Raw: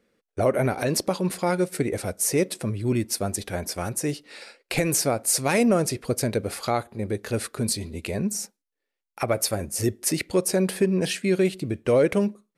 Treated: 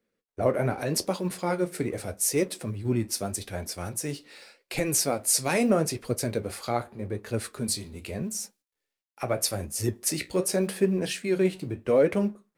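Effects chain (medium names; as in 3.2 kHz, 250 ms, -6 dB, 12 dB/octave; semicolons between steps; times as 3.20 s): companding laws mixed up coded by mu; flange 0.82 Hz, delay 8.4 ms, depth 9.3 ms, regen -55%; three bands expanded up and down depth 40%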